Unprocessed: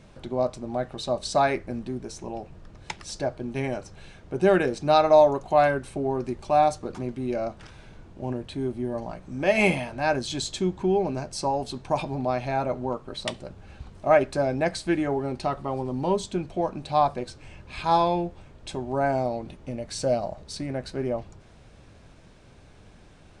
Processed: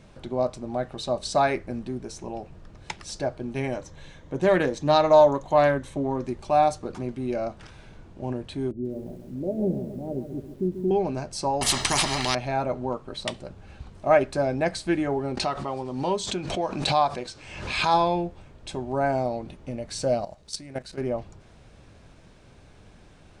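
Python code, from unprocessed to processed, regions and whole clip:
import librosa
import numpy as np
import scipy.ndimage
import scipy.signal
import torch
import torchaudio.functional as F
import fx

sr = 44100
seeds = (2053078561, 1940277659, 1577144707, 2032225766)

y = fx.chain(x, sr, fx.ripple_eq(per_octave=1.1, db=7),
    fx.doppler_dist(depth_ms=0.15), at=(3.75, 6.28))
y = fx.chain(y, sr, fx.cheby2_lowpass(hz=2100.0, order=4, stop_db=70),
    fx.low_shelf(hz=100.0, db=-5.5),
    fx.echo_crushed(ms=138, feedback_pct=55, bits=9, wet_db=-9.5), at=(8.71, 10.91))
y = fx.chain(y, sr, fx.peak_eq(hz=4200.0, db=5.0, octaves=1.3),
    fx.comb(ms=1.0, depth=0.92),
    fx.spectral_comp(ratio=4.0), at=(11.61, 12.35))
y = fx.chain(y, sr, fx.lowpass(hz=7600.0, slope=12),
    fx.tilt_eq(slope=2.0),
    fx.pre_swell(db_per_s=54.0), at=(15.37, 17.94))
y = fx.chain(y, sr, fx.high_shelf(hz=2600.0, db=10.5),
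    fx.level_steps(step_db=14), at=(20.24, 21.01))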